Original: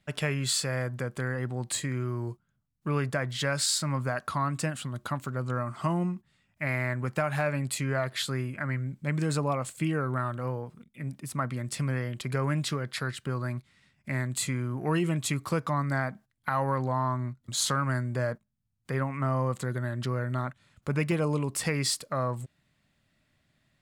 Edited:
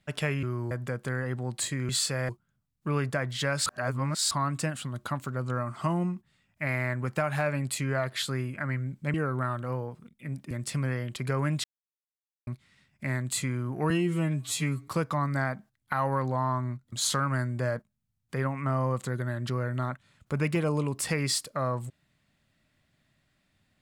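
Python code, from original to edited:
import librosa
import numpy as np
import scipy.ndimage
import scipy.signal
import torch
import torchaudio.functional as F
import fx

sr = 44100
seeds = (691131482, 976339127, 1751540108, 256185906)

y = fx.edit(x, sr, fx.swap(start_s=0.43, length_s=0.4, other_s=2.01, other_length_s=0.28),
    fx.reverse_span(start_s=3.66, length_s=0.65),
    fx.cut(start_s=9.14, length_s=0.75),
    fx.cut(start_s=11.26, length_s=0.3),
    fx.silence(start_s=12.69, length_s=0.83),
    fx.stretch_span(start_s=14.95, length_s=0.49, factor=2.0), tone=tone)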